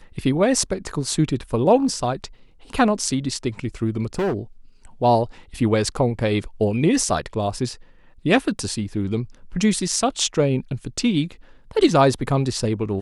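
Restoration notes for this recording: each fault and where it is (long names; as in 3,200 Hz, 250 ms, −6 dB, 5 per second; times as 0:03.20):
0:04.15–0:04.37: clipping −19 dBFS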